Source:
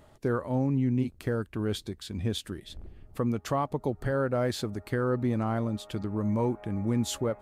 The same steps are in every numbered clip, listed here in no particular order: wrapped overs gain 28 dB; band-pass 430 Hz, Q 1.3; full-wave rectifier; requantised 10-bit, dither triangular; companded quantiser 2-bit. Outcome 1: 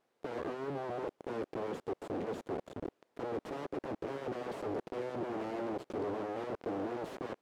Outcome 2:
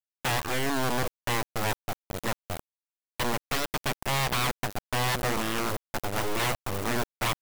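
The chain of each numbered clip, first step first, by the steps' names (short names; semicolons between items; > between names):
companded quantiser > requantised > full-wave rectifier > band-pass > wrapped overs; band-pass > requantised > full-wave rectifier > wrapped overs > companded quantiser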